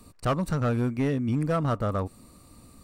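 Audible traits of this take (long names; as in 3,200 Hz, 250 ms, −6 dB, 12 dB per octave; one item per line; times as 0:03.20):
background noise floor −54 dBFS
spectral slope −6.5 dB per octave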